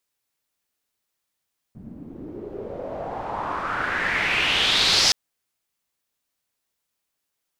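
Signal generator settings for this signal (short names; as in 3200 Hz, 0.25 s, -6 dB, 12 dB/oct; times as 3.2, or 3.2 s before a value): swept filtered noise white, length 3.37 s lowpass, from 190 Hz, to 5200 Hz, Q 3.8, exponential, gain ramp +9 dB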